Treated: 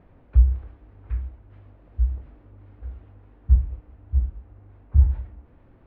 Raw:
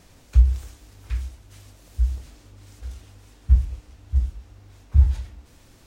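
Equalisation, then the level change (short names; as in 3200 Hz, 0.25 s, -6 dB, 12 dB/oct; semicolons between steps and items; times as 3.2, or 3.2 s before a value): air absorption 370 m; tone controls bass -2 dB, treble -15 dB; high shelf 2100 Hz -12 dB; +1.5 dB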